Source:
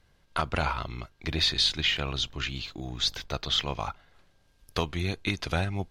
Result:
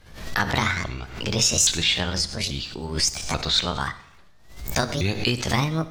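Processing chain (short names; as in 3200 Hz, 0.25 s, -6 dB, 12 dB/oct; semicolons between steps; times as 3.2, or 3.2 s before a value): repeated pitch sweeps +9 st, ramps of 0.835 s; Schroeder reverb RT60 0.79 s, combs from 25 ms, DRR 13.5 dB; backwards sustainer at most 84 dB/s; gain +6 dB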